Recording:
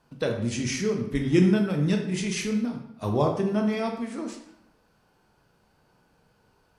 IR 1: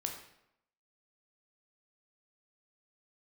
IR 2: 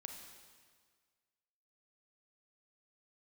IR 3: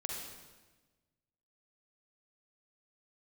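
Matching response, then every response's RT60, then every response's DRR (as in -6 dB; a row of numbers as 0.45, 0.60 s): 1; 0.80, 1.7, 1.3 s; 2.0, 3.0, -1.0 dB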